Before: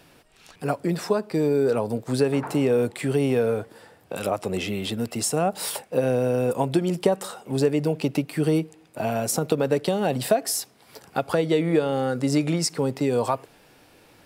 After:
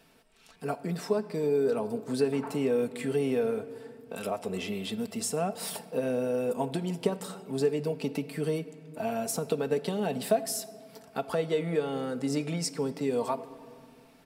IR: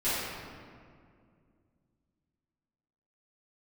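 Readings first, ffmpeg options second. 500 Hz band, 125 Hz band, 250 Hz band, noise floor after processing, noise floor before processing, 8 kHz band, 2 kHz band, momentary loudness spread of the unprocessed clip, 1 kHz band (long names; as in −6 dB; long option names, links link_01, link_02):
−5.5 dB, −9.0 dB, −7.0 dB, −57 dBFS, −55 dBFS, −7.0 dB, −7.5 dB, 8 LU, −7.0 dB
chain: -filter_complex "[0:a]aecho=1:1:4.5:0.54,asplit=2[link_01][link_02];[1:a]atrim=start_sample=2205[link_03];[link_02][link_03]afir=irnorm=-1:irlink=0,volume=-24dB[link_04];[link_01][link_04]amix=inputs=2:normalize=0,volume=-8.5dB"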